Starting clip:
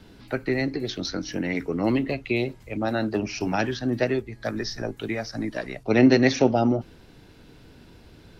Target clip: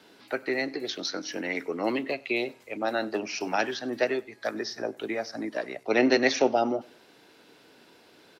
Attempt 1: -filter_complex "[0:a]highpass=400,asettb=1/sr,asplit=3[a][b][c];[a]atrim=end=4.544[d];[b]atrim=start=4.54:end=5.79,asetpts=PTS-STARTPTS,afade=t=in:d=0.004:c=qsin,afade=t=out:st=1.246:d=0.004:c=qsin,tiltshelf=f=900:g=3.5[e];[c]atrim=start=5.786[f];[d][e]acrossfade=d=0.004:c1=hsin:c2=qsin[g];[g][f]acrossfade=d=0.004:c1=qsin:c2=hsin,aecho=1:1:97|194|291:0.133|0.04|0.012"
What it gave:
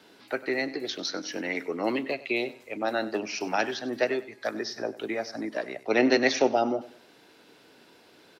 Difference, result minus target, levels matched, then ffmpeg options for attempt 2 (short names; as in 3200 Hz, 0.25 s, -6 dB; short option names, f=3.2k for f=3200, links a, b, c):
echo-to-direct +7 dB
-filter_complex "[0:a]highpass=400,asettb=1/sr,asplit=3[a][b][c];[a]atrim=end=4.544[d];[b]atrim=start=4.54:end=5.79,asetpts=PTS-STARTPTS,afade=t=in:d=0.004:c=qsin,afade=t=out:st=1.246:d=0.004:c=qsin,tiltshelf=f=900:g=3.5[e];[c]atrim=start=5.786[f];[d][e]acrossfade=d=0.004:c1=hsin:c2=qsin[g];[g][f]acrossfade=d=0.004:c1=qsin:c2=hsin,aecho=1:1:97|194:0.0596|0.0179"